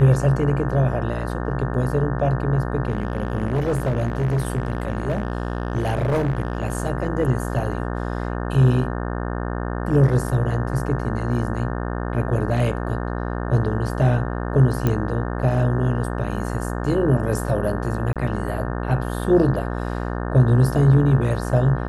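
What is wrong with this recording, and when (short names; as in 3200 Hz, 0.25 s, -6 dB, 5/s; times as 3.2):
buzz 60 Hz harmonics 30 -26 dBFS
2.88–6.75 clipped -17 dBFS
14.87 pop -9 dBFS
18.13–18.16 gap 27 ms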